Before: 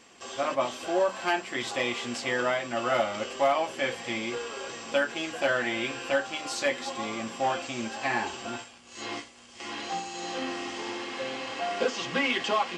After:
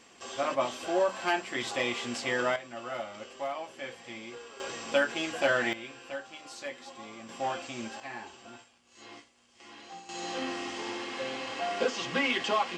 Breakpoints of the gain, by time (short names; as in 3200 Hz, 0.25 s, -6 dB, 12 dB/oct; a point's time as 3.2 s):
-1.5 dB
from 2.56 s -11 dB
from 4.6 s 0 dB
from 5.73 s -12 dB
from 7.29 s -5 dB
from 8 s -13 dB
from 10.09 s -1.5 dB